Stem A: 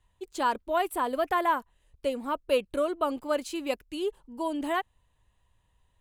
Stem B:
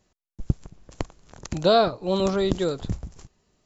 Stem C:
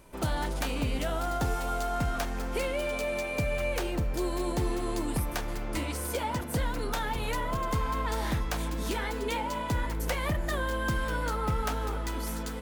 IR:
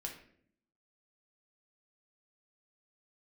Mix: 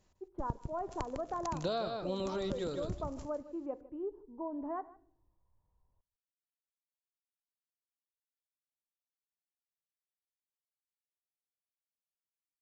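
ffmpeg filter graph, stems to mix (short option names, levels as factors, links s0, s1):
-filter_complex "[0:a]lowpass=f=1100:w=0.5412,lowpass=f=1100:w=1.3066,volume=0.355,asplit=3[s0][s1][s2];[s1]volume=0.376[s3];[s2]volume=0.106[s4];[1:a]volume=0.531,asplit=2[s5][s6];[s6]volume=0.376[s7];[3:a]atrim=start_sample=2205[s8];[s3][s8]afir=irnorm=-1:irlink=0[s9];[s4][s7]amix=inputs=2:normalize=0,aecho=0:1:153:1[s10];[s0][s5][s9][s10]amix=inputs=4:normalize=0,acompressor=threshold=0.02:ratio=4"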